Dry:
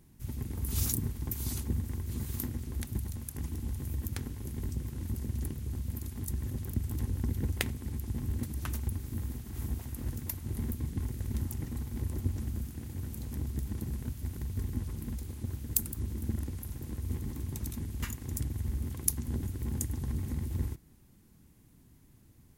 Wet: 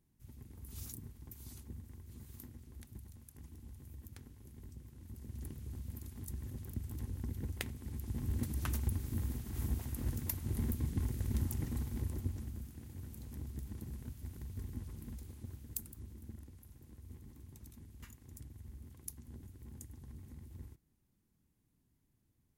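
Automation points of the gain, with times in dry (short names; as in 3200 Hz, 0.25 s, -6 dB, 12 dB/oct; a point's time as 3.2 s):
5.02 s -16 dB
5.53 s -8.5 dB
7.69 s -8.5 dB
8.49 s -1 dB
11.8 s -1 dB
12.54 s -9 dB
15.25 s -9 dB
16.47 s -17 dB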